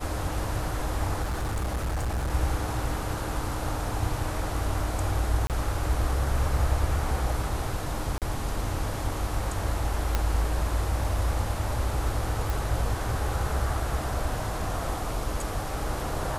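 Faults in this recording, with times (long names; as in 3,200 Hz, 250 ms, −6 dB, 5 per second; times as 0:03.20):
0:01.23–0:02.31: clipping −25 dBFS
0:05.47–0:05.50: drop-out 28 ms
0:08.18–0:08.22: drop-out 38 ms
0:10.15: click −11 dBFS
0:12.50: click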